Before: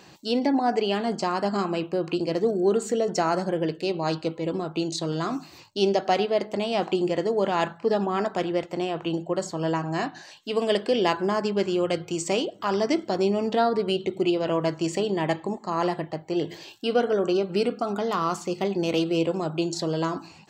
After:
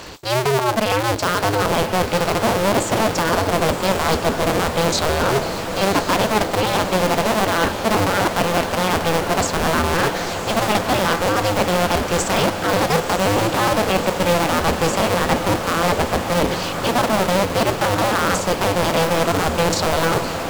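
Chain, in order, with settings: cycle switcher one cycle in 2, inverted; reverse; compressor, threshold -30 dBFS, peak gain reduction 13 dB; reverse; sine folder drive 3 dB, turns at -18.5 dBFS; diffused feedback echo 1.054 s, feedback 74%, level -8.5 dB; gain +8 dB

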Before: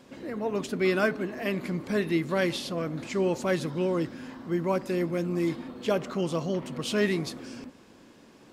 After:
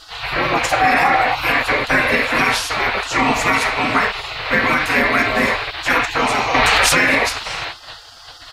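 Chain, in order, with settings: band noise 2300–4300 Hz -45 dBFS; resonant high shelf 2500 Hz -8 dB, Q 3; comb 5.2 ms, depth 46%; on a send at -1.5 dB: LPF 6100 Hz 12 dB/oct + reverb RT60 0.40 s, pre-delay 5 ms; on the sum: spectral gate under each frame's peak -20 dB weak; in parallel at -10.5 dB: soft clip -32.5 dBFS, distortion -13 dB; 0.7–1.39 on the sum: bell 750 Hz +14.5 dB 0.29 oct; 3.1–3.95 notch 1600 Hz, Q 11; maximiser +26 dB; 6.54–7.01 fast leveller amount 100%; gain -4.5 dB

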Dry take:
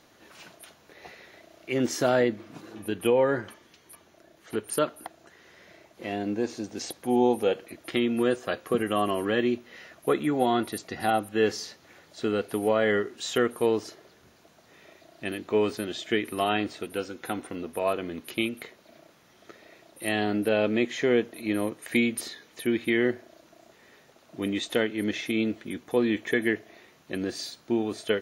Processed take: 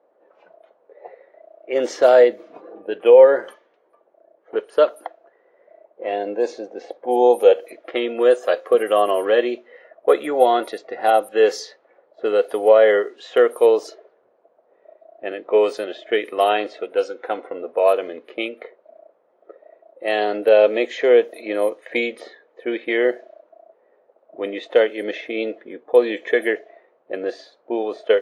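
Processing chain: spectral noise reduction 8 dB; resonant high-pass 520 Hz, resonance Q 3.4; low-pass opened by the level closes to 840 Hz, open at -18.5 dBFS; gain +4 dB

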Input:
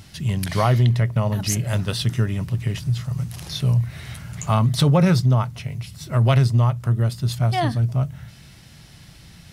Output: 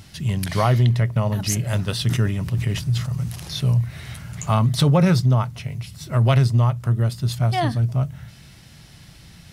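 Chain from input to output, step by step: 2.04–3.6 sustainer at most 79 dB/s

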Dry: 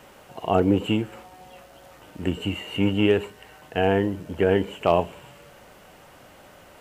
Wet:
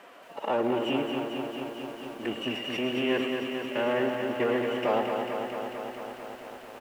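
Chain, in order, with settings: half-wave gain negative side -7 dB; limiter -15 dBFS, peak gain reduction 8 dB; HPF 150 Hz 12 dB/oct; low shelf 240 Hz -10 dB; formant-preserving pitch shift +4 st; tone controls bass -3 dB, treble -11 dB; feedback echo 0.104 s, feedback 45%, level -12 dB; lo-fi delay 0.223 s, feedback 80%, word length 10-bit, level -5.5 dB; gain +4 dB

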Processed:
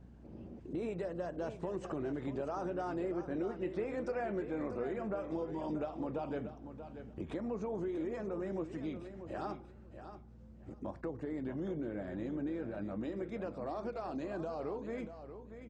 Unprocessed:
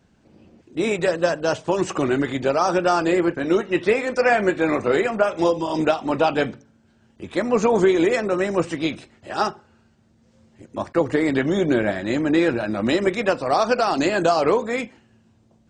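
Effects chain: Doppler pass-by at 3.86, 10 m/s, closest 7.2 m; tilt shelf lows +8 dB, about 1400 Hz; compressor 5:1, threshold -43 dBFS, peak gain reduction 30 dB; in parallel at +3 dB: limiter -41.5 dBFS, peak gain reduction 12.5 dB; on the sum: hum 60 Hz, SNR 18 dB; feedback echo 0.635 s, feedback 18%, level -10.5 dB

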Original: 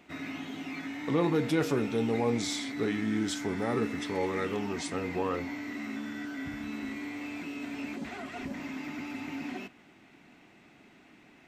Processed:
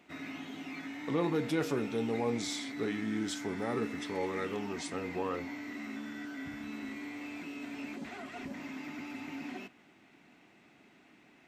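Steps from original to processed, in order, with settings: low shelf 73 Hz -9.5 dB; gain -3.5 dB

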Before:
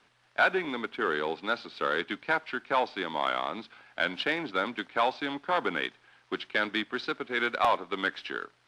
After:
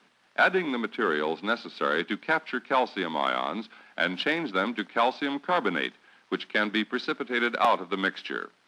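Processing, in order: resonant low shelf 140 Hz -10.5 dB, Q 3; gain +2 dB

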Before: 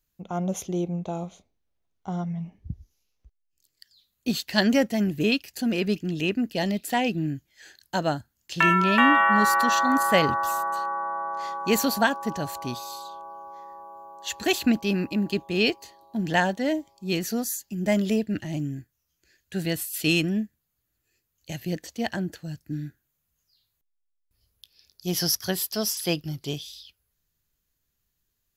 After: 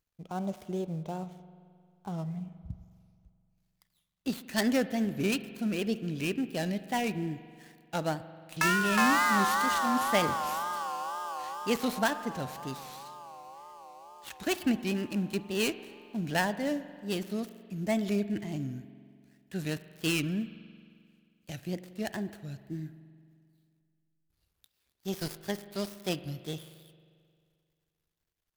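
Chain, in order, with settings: switching dead time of 0.083 ms; wow and flutter 140 cents; spring tank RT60 2.2 s, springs 44 ms, chirp 30 ms, DRR 13.5 dB; gain -6 dB

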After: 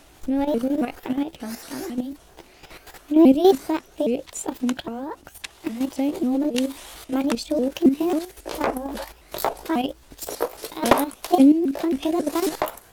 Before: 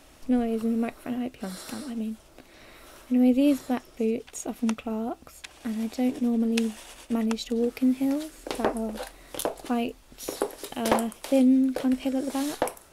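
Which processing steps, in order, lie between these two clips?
repeated pitch sweeps +5.5 st, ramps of 0.271 s; level quantiser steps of 10 dB; gain +9 dB

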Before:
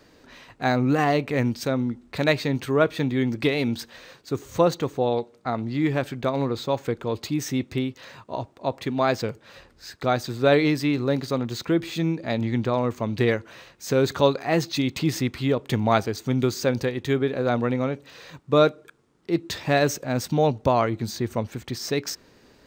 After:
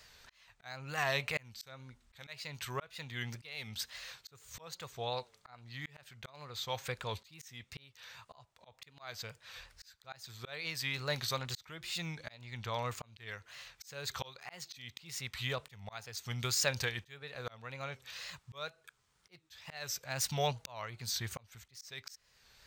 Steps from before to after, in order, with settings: wow and flutter 120 cents; passive tone stack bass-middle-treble 10-0-10; auto swell 0.66 s; gain +3.5 dB

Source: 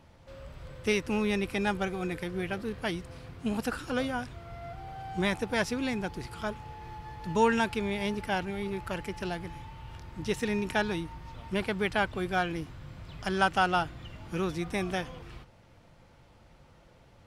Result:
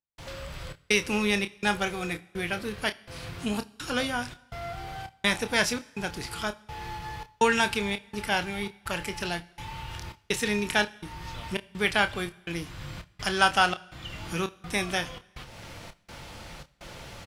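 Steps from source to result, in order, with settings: tilt shelf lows -5.5 dB, about 1500 Hz; upward compressor, threshold -36 dBFS; step gate "..xxxxxx" 166 bpm -60 dB; doubler 29 ms -10.5 dB; two-slope reverb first 0.74 s, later 2.5 s, DRR 17.5 dB; gain +5 dB

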